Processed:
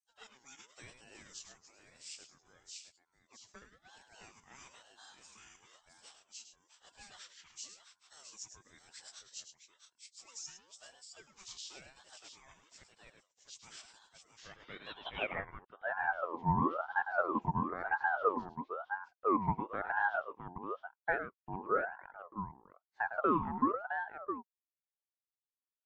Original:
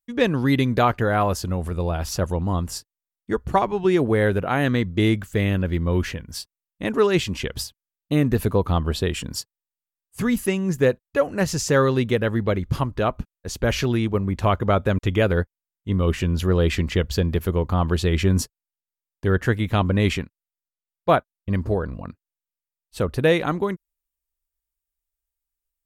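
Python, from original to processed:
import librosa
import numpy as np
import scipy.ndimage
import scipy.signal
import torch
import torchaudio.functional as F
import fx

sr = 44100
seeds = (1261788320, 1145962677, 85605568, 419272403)

y = fx.freq_compress(x, sr, knee_hz=1800.0, ratio=1.5)
y = scipy.signal.sosfilt(scipy.signal.butter(2, 110.0, 'highpass', fs=sr, output='sos'), y)
y = fx.echo_multitap(y, sr, ms=(105, 663), db=(-9.5, -8.0))
y = fx.filter_sweep_bandpass(y, sr, from_hz=6800.0, to_hz=380.0, start_s=14.34, end_s=16.04, q=5.1)
y = fx.ring_lfo(y, sr, carrier_hz=890.0, swing_pct=40, hz=1.0)
y = y * librosa.db_to_amplitude(-1.0)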